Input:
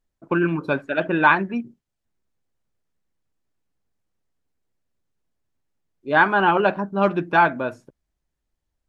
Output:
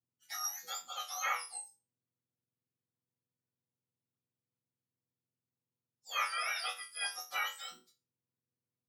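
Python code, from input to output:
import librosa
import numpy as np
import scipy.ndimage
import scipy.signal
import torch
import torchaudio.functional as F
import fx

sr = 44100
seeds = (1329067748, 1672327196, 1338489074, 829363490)

y = fx.octave_mirror(x, sr, pivot_hz=1400.0)
y = fx.resonator_bank(y, sr, root=40, chord='fifth', decay_s=0.28)
y = y * librosa.db_to_amplitude(-3.0)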